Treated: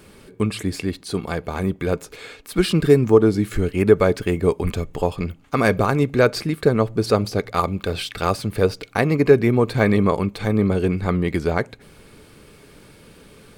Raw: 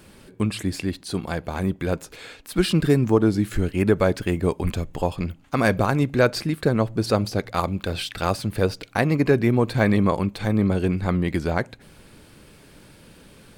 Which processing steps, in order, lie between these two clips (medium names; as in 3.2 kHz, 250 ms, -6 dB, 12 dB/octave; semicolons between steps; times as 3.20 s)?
small resonant body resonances 430/1200/2200 Hz, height 7 dB; trim +1 dB